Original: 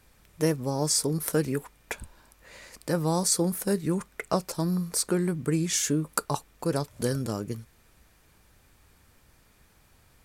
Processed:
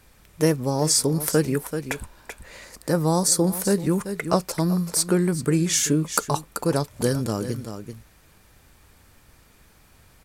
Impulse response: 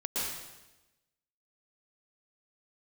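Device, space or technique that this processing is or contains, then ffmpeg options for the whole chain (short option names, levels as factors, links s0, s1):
ducked delay: -filter_complex "[0:a]asplit=3[s0][s1][s2];[s1]adelay=385,volume=0.376[s3];[s2]apad=whole_len=468931[s4];[s3][s4]sidechaincompress=threshold=0.0224:ratio=8:attack=42:release=215[s5];[s0][s5]amix=inputs=2:normalize=0,asettb=1/sr,asplit=3[s6][s7][s8];[s6]atrim=end=2.644[s9];[s7]atrim=start=2.64:end=3.47,asetpts=PTS-STARTPTS,afade=t=in:d=0.004:c=qsin,afade=t=out:st=0.826:d=0.004:c=qsin,equalizer=f=2700:t=o:w=1:g=-5[s10];[s8]atrim=start=3.466[s11];[s9][s10]acrossfade=d=0.004:c1=hsin:c2=qsin[s12];[s12][s11]acrossfade=d=0.004:c1=qsin:c2=hsin,volume=1.78"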